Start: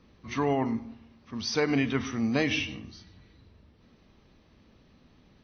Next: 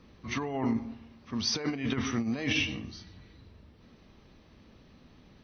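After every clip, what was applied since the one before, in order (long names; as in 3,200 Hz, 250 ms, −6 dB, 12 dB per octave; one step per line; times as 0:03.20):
compressor whose output falls as the input rises −29 dBFS, ratio −0.5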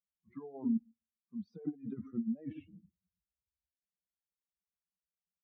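spectral dynamics exaggerated over time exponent 3
four-pole ladder band-pass 240 Hz, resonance 45%
level +8 dB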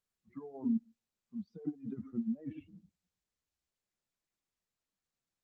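Opus 20 kbit/s 48,000 Hz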